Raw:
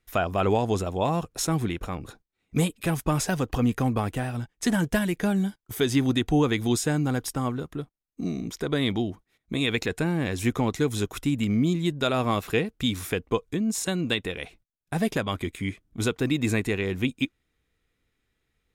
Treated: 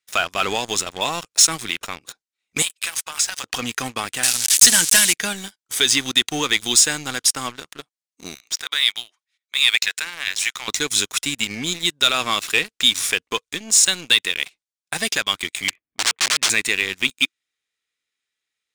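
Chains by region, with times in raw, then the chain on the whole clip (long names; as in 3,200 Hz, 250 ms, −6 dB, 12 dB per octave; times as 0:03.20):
0:02.62–0:03.44: high-pass filter 890 Hz + downward compressor, threshold −33 dBFS
0:04.23–0:05.13: spike at every zero crossing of −23 dBFS + high-shelf EQ 3,200 Hz +8.5 dB
0:08.35–0:10.68: high-pass filter 1,300 Hz + high-shelf EQ 9,200 Hz −10 dB
0:15.68–0:16.50: low-pass filter 2,400 Hz 24 dB per octave + notch filter 1,400 Hz, Q 5.7 + wrap-around overflow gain 23.5 dB
whole clip: meter weighting curve ITU-R 468; leveller curve on the samples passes 3; dynamic equaliser 660 Hz, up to −5 dB, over −31 dBFS, Q 0.84; level −4 dB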